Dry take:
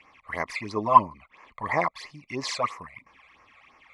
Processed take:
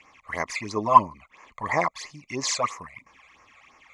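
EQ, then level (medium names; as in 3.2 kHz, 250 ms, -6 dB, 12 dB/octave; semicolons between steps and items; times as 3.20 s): peaking EQ 6.7 kHz +13 dB 0.44 oct; +1.0 dB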